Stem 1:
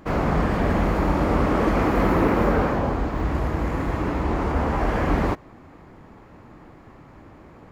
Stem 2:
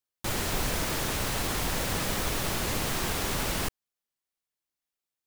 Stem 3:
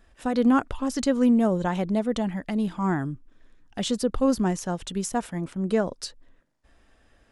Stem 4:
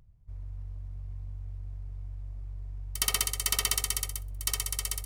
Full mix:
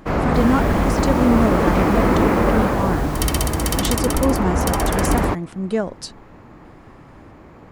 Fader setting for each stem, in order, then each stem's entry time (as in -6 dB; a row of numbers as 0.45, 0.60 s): +3.0, -8.5, +2.0, +2.0 dB; 0.00, 0.10, 0.00, 0.20 s